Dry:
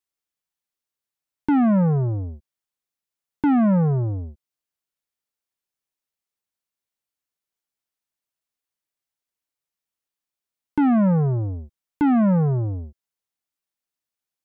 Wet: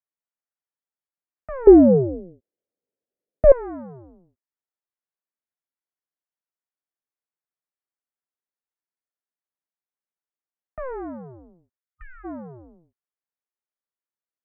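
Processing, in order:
0:11.79–0:12.24: time-frequency box erased 350–1,500 Hz
single-sideband voice off tune −260 Hz 460–2,300 Hz
0:01.67–0:03.52: low shelf with overshoot 720 Hz +13 dB, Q 3
expander for the loud parts 1.5 to 1, over −31 dBFS
level +5 dB

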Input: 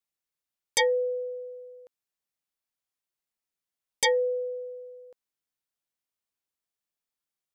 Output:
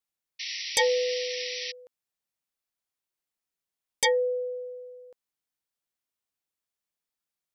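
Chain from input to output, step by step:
sound drawn into the spectrogram noise, 0:00.39–0:01.72, 1,800–5,900 Hz −35 dBFS

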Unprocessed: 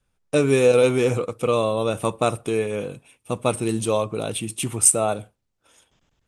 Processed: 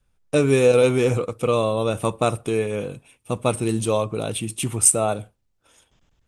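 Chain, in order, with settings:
low-shelf EQ 89 Hz +7.5 dB

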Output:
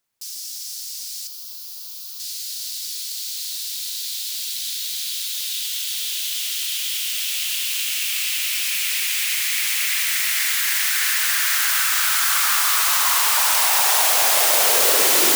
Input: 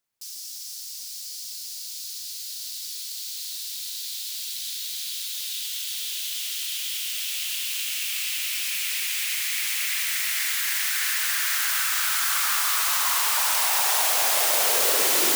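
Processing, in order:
0:01.27–0:02.20: octave-band graphic EQ 125/1,000/2,000/4,000/8,000 Hz −9/+11/−11/−3/−10 dB
level +5 dB

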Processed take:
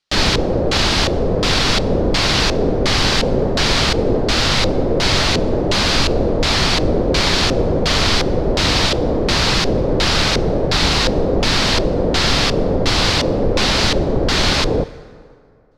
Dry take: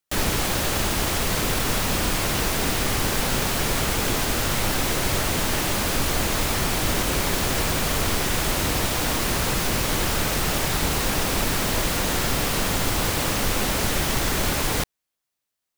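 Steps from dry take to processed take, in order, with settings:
auto-filter low-pass square 1.4 Hz 500–4,500 Hz
dense smooth reverb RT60 2.4 s, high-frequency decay 0.55×, DRR 17 dB
level +7 dB

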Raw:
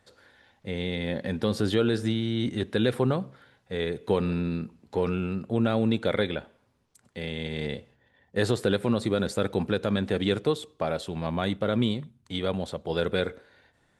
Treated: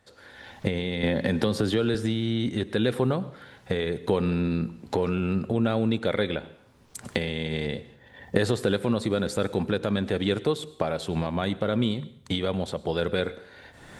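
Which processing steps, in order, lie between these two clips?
camcorder AGC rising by 31 dB per second
dense smooth reverb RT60 0.6 s, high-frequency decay 1×, pre-delay 85 ms, DRR 18.5 dB
0:01.03–0:01.95: multiband upward and downward compressor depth 100%

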